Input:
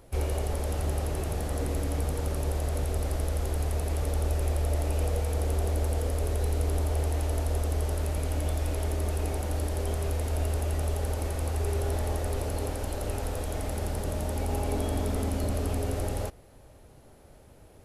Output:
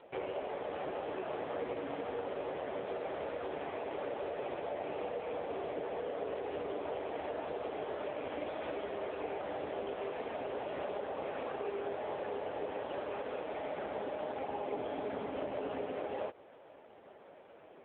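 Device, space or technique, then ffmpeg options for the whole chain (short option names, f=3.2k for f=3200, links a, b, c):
voicemail: -af "highpass=400,lowpass=3.1k,acompressor=threshold=-39dB:ratio=8,volume=6.5dB" -ar 8000 -c:a libopencore_amrnb -b:a 5900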